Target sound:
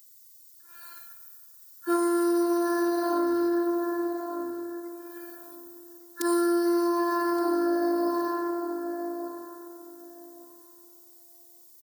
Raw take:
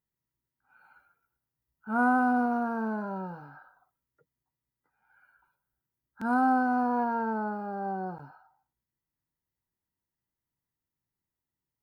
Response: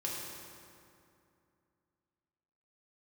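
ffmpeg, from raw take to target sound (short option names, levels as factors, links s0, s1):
-filter_complex "[0:a]highshelf=f=3200:g=10.5,aexciter=amount=11.6:drive=4.7:freq=3600,equalizer=f=125:t=o:w=1:g=-4,equalizer=f=250:t=o:w=1:g=9,equalizer=f=500:t=o:w=1:g=7,equalizer=f=2000:t=o:w=1:g=9,asplit=2[s0][s1];[s1]adelay=1171,lowpass=f=1200:p=1,volume=0.355,asplit=2[s2][s3];[s3]adelay=1171,lowpass=f=1200:p=1,volume=0.19,asplit=2[s4][s5];[s5]adelay=1171,lowpass=f=1200:p=1,volume=0.19[s6];[s0][s2][s4][s6]amix=inputs=4:normalize=0,alimiter=limit=0.237:level=0:latency=1:release=419,asplit=2[s7][s8];[1:a]atrim=start_sample=2205,adelay=116[s9];[s8][s9]afir=irnorm=-1:irlink=0,volume=0.133[s10];[s7][s10]amix=inputs=2:normalize=0,afreqshift=71,afftfilt=real='hypot(re,im)*cos(PI*b)':imag='0':win_size=512:overlap=0.75,acompressor=threshold=0.0398:ratio=6,highpass=f=83:w=0.5412,highpass=f=83:w=1.3066,volume=2.11"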